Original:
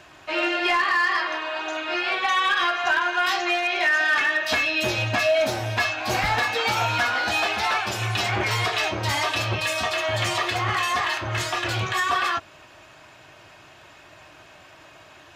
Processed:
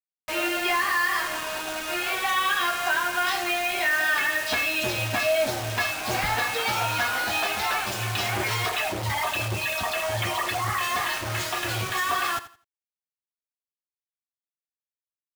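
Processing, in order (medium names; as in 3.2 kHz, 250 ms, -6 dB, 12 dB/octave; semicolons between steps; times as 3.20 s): 8.69–10.81 s: resonances exaggerated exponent 2; bit crusher 5-bit; feedback delay 84 ms, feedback 25%, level -15 dB; trim -3 dB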